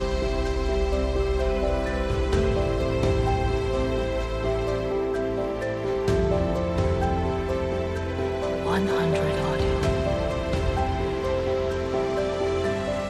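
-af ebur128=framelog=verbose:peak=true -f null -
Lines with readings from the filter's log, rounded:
Integrated loudness:
  I:         -25.5 LUFS
  Threshold: -35.5 LUFS
Loudness range:
  LRA:         1.0 LU
  Threshold: -45.4 LUFS
  LRA low:   -25.9 LUFS
  LRA high:  -24.9 LUFS
True peak:
  Peak:      -11.0 dBFS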